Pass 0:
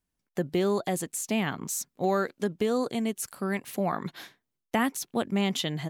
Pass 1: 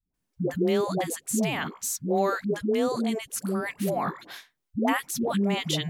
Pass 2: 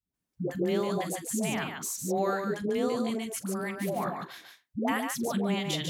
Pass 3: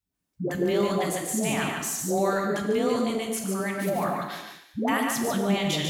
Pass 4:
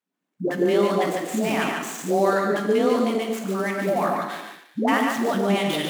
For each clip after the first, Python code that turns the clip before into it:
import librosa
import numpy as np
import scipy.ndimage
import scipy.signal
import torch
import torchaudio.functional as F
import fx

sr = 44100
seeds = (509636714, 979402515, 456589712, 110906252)

y1 = fx.dispersion(x, sr, late='highs', ms=142.0, hz=430.0)
y1 = y1 * librosa.db_to_amplitude(2.0)
y2 = scipy.signal.sosfilt(scipy.signal.butter(2, 53.0, 'highpass', fs=sr, output='sos'), y1)
y2 = fx.echo_multitap(y2, sr, ms=(43, 146), db=(-15.5, -5.0))
y2 = y2 * librosa.db_to_amplitude(-4.5)
y3 = fx.transient(y2, sr, attack_db=-1, sustain_db=5)
y3 = fx.rev_gated(y3, sr, seeds[0], gate_ms=390, shape='falling', drr_db=4.0)
y3 = y3 * librosa.db_to_amplitude(3.0)
y4 = scipy.ndimage.median_filter(y3, 9, mode='constant')
y4 = scipy.signal.sosfilt(scipy.signal.butter(4, 200.0, 'highpass', fs=sr, output='sos'), y4)
y4 = y4 * librosa.db_to_amplitude(5.0)